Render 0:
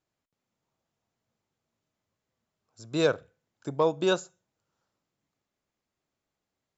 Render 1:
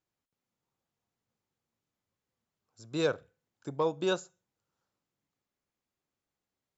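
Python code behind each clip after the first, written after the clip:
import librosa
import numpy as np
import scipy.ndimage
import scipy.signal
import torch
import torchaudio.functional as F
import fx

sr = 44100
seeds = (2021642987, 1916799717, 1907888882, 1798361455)

y = fx.notch(x, sr, hz=640.0, q=15.0)
y = F.gain(torch.from_numpy(y), -4.5).numpy()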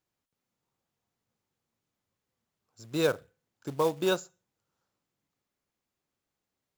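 y = fx.quant_float(x, sr, bits=2)
y = F.gain(torch.from_numpy(y), 2.5).numpy()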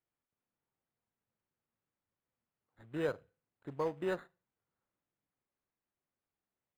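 y = np.interp(np.arange(len(x)), np.arange(len(x))[::8], x[::8])
y = F.gain(torch.from_numpy(y), -8.0).numpy()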